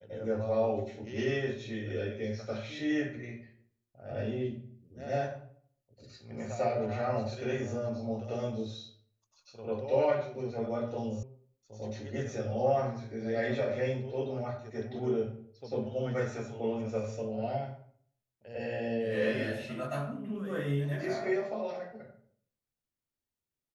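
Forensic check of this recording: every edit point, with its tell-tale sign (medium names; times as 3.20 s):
11.23 s: sound stops dead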